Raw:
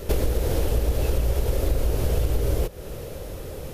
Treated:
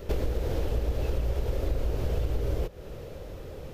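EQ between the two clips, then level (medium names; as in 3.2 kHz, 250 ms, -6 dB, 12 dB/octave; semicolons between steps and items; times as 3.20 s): peaking EQ 11 kHz -13 dB 1.2 oct; -5.5 dB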